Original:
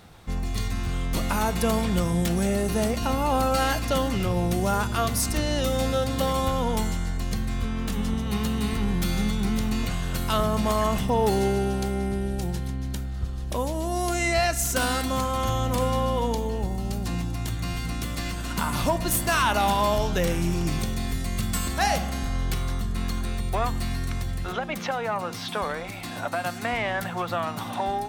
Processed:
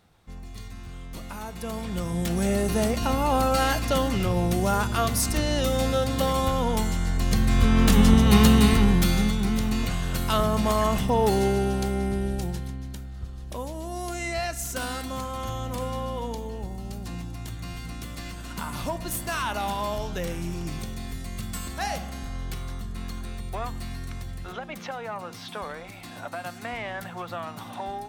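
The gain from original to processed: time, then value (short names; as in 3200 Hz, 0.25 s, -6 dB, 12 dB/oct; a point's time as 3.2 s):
1.51 s -12 dB
2.51 s +0.5 dB
6.87 s +0.5 dB
7.82 s +10.5 dB
8.49 s +10.5 dB
9.39 s +0.5 dB
12.3 s +0.5 dB
12.95 s -6.5 dB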